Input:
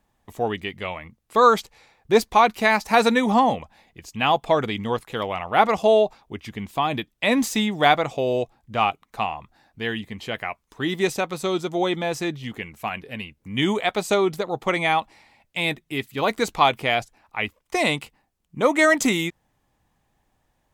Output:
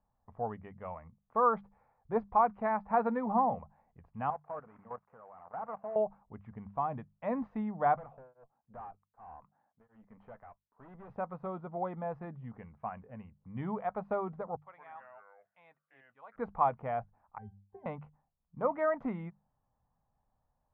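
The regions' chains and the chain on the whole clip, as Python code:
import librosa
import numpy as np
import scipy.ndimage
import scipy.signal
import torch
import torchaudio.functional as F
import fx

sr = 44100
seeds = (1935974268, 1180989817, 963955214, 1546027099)

y = fx.chain(x, sr, fx.cvsd(bps=16000),
    fx.highpass(hz=570.0, slope=6),
    fx.level_steps(step_db=14), at=(4.3, 5.96))
y = fx.chain(y, sr, fx.highpass(hz=200.0, slope=12),
    fx.tube_stage(drive_db=32.0, bias=0.55),
    fx.tremolo_abs(hz=1.3), at=(7.96, 11.1))
y = fx.chain(y, sr, fx.differentiator(),
    fx.echo_pitch(ms=84, semitones=-4, count=2, db_per_echo=-6.0), at=(14.56, 16.36))
y = fx.chain(y, sr, fx.low_shelf(hz=470.0, db=8.0),
    fx.octave_resonator(note='G', decay_s=0.23), at=(17.38, 17.86))
y = scipy.signal.sosfilt(scipy.signal.butter(4, 1200.0, 'lowpass', fs=sr, output='sos'), y)
y = fx.peak_eq(y, sr, hz=340.0, db=-15.0, octaves=0.64)
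y = fx.hum_notches(y, sr, base_hz=50, count=4)
y = y * 10.0 ** (-8.0 / 20.0)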